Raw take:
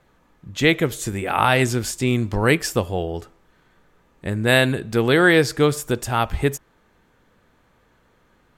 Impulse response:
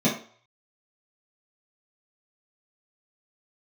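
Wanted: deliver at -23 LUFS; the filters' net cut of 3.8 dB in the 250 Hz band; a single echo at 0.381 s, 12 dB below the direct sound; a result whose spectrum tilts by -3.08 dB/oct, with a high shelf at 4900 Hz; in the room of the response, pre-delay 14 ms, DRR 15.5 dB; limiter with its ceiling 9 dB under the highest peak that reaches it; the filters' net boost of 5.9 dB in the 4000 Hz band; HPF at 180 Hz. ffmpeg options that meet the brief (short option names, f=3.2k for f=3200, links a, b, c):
-filter_complex "[0:a]highpass=180,equalizer=f=250:t=o:g=-4,equalizer=f=4k:t=o:g=5.5,highshelf=f=4.9k:g=4,alimiter=limit=-6.5dB:level=0:latency=1,aecho=1:1:381:0.251,asplit=2[a][b];[1:a]atrim=start_sample=2205,adelay=14[c];[b][c]afir=irnorm=-1:irlink=0,volume=-29.5dB[d];[a][d]amix=inputs=2:normalize=0,volume=-1.5dB"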